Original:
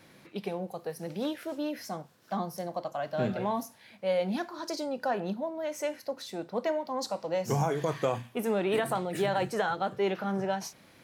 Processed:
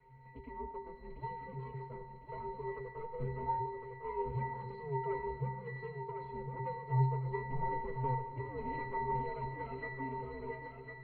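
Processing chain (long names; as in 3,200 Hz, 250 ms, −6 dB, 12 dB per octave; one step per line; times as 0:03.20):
lower of the sound and its delayed copy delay 4.9 ms
in parallel at +2.5 dB: downward compressor, threshold −38 dBFS, peak gain reduction 13 dB
on the sum: flanger 0.24 Hz, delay 4.4 ms, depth 3.9 ms, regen −28%
resonances in every octave C, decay 0.58 s
feedback echo with a high-pass in the loop 1,055 ms, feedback 35%, high-pass 200 Hz, level −6 dB
on a send at −11 dB: convolution reverb RT60 2.2 s, pre-delay 70 ms
on the sum: single-sideband voice off tune −130 Hz 170–3,500 Hz
level +15.5 dB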